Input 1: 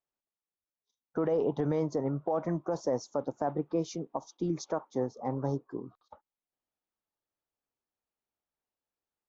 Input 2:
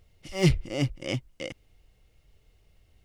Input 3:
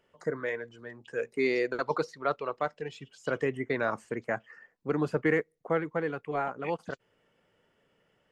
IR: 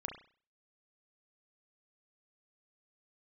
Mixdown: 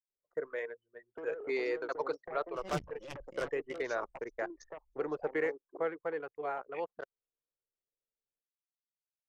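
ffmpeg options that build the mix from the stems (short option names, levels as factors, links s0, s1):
-filter_complex "[0:a]highpass=f=360:w=0.5412,highpass=f=360:w=1.3066,volume=0.562[s0];[1:a]aecho=1:1:5.5:0.35,adelay=2300,volume=0.447[s1];[2:a]lowshelf=f=300:t=q:w=1.5:g=-10.5,acontrast=84,adelay=100,volume=0.2[s2];[s0][s1]amix=inputs=2:normalize=0,aeval=exprs='0.2*(cos(1*acos(clip(val(0)/0.2,-1,1)))-cos(1*PI/2))+0.00447*(cos(5*acos(clip(val(0)/0.2,-1,1)))-cos(5*PI/2))+0.0562*(cos(7*acos(clip(val(0)/0.2,-1,1)))-cos(7*PI/2))':c=same,acompressor=threshold=0.00562:ratio=2,volume=1[s3];[s2][s3]amix=inputs=2:normalize=0,anlmdn=0.0398"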